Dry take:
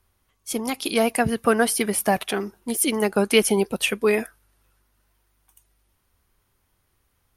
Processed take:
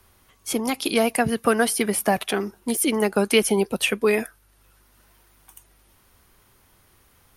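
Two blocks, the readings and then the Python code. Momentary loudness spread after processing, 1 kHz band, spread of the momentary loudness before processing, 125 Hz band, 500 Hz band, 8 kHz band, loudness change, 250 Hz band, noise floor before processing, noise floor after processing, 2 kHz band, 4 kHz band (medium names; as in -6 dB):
8 LU, 0.0 dB, 10 LU, -0.5 dB, 0.0 dB, -0.5 dB, 0.0 dB, +0.5 dB, -70 dBFS, -59 dBFS, +0.5 dB, 0.0 dB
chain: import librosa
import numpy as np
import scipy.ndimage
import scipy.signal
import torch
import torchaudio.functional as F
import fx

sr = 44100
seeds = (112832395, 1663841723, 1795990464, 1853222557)

y = fx.band_squash(x, sr, depth_pct=40)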